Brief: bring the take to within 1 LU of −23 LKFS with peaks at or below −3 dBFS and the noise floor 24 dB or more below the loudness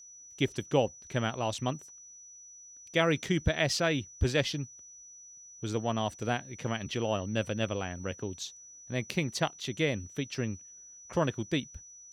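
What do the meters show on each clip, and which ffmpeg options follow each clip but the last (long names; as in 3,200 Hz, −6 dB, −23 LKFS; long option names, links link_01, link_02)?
interfering tone 5,900 Hz; level of the tone −49 dBFS; integrated loudness −32.0 LKFS; sample peak −13.5 dBFS; target loudness −23.0 LKFS
→ -af "bandreject=frequency=5900:width=30"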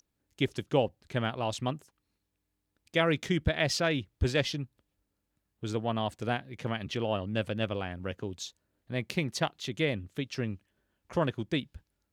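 interfering tone none found; integrated loudness −32.0 LKFS; sample peak −13.5 dBFS; target loudness −23.0 LKFS
→ -af "volume=9dB"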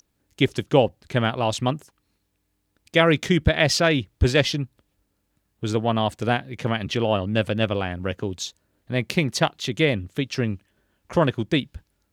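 integrated loudness −23.0 LKFS; sample peak −4.5 dBFS; background noise floor −73 dBFS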